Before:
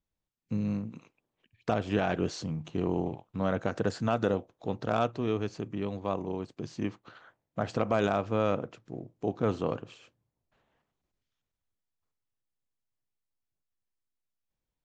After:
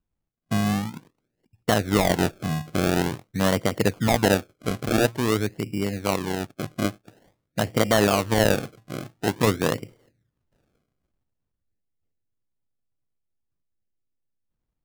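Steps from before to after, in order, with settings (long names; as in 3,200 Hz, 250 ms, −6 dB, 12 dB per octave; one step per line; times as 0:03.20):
adaptive Wiener filter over 41 samples
sample-and-hold swept by an LFO 33×, swing 100% 0.48 Hz
level +8 dB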